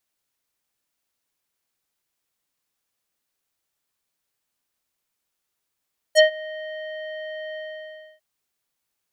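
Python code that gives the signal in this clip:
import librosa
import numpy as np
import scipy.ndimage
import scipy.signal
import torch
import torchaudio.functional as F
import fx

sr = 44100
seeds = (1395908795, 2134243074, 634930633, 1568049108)

y = fx.sub_voice(sr, note=75, wave='square', cutoff_hz=2700.0, q=2.4, env_oct=2.5, env_s=0.06, attack_ms=40.0, decay_s=0.11, sustain_db=-22.5, release_s=0.64, note_s=1.41, slope=24)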